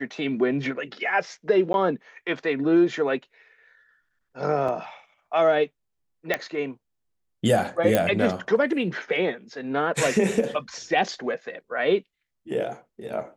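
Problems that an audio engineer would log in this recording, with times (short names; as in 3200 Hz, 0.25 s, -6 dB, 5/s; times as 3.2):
1.73–1.74 gap 11 ms
4.68 gap 4.6 ms
6.34 pop -9 dBFS
7.95 pop -7 dBFS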